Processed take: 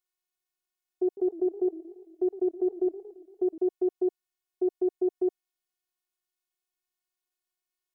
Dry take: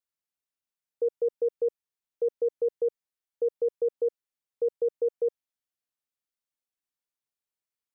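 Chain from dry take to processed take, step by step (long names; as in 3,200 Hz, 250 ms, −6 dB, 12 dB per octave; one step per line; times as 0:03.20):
phases set to zero 363 Hz
0:01.05–0:03.58: feedback echo with a swinging delay time 114 ms, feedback 63%, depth 197 cents, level −16.5 dB
level +5 dB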